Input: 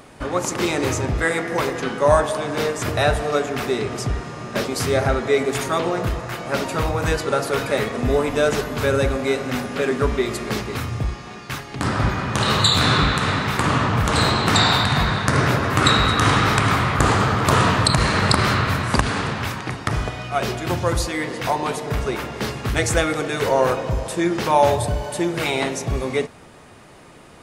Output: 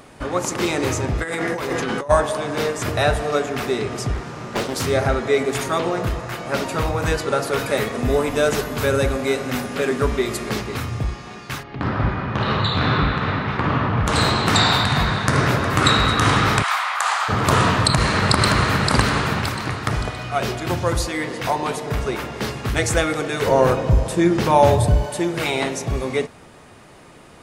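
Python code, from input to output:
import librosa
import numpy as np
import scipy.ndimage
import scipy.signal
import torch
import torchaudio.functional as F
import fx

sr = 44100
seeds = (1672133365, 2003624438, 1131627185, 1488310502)

y = fx.over_compress(x, sr, threshold_db=-26.0, ratio=-1.0, at=(1.22, 2.09), fade=0.02)
y = fx.doppler_dist(y, sr, depth_ms=0.76, at=(4.14, 4.84))
y = fx.high_shelf(y, sr, hz=10000.0, db=8.5, at=(7.59, 10.5))
y = fx.air_absorb(y, sr, metres=290.0, at=(11.62, 14.06), fade=0.02)
y = fx.echo_throw(y, sr, start_s=14.85, length_s=0.56, ms=360, feedback_pct=85, wet_db=-16.0)
y = fx.steep_highpass(y, sr, hz=730.0, slope=36, at=(16.62, 17.28), fade=0.02)
y = fx.echo_throw(y, sr, start_s=17.84, length_s=0.99, ms=570, feedback_pct=40, wet_db=-3.5)
y = fx.low_shelf(y, sr, hz=310.0, db=8.5, at=(23.47, 25.06))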